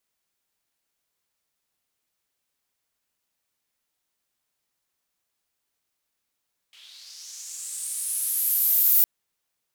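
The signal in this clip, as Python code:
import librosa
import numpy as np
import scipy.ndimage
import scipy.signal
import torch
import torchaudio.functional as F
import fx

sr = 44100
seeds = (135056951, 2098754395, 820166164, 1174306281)

y = fx.riser_noise(sr, seeds[0], length_s=2.31, colour='white', kind='bandpass', start_hz=2900.0, end_hz=15000.0, q=3.8, swell_db=32, law='linear')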